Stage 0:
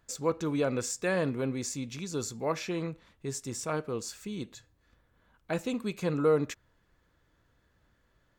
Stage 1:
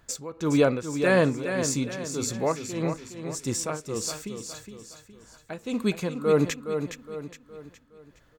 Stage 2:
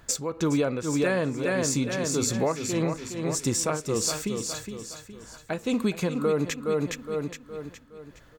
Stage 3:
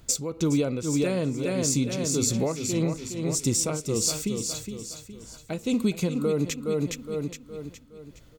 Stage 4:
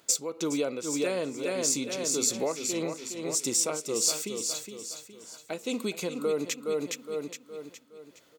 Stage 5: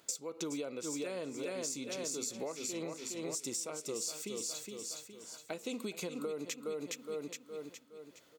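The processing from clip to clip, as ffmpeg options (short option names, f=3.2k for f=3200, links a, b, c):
-af "tremolo=f=1.7:d=0.89,aecho=1:1:415|830|1245|1660|2075:0.398|0.167|0.0702|0.0295|0.0124,volume=9dB"
-af "acompressor=threshold=-28dB:ratio=8,volume=6.5dB"
-af "equalizer=f=1.1k:t=o:w=2.2:g=-10,bandreject=f=1.7k:w=6,volume=3dB"
-af "highpass=390"
-af "acompressor=threshold=-33dB:ratio=6,volume=-3dB"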